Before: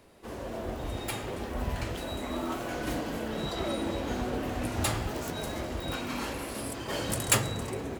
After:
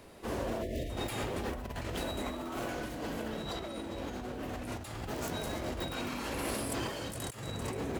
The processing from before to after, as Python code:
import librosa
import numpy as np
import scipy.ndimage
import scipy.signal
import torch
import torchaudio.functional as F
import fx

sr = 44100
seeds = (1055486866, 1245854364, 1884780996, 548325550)

y = fx.spec_erase(x, sr, start_s=0.62, length_s=0.28, low_hz=700.0, high_hz=1700.0)
y = fx.over_compress(y, sr, threshold_db=-38.0, ratio=-1.0)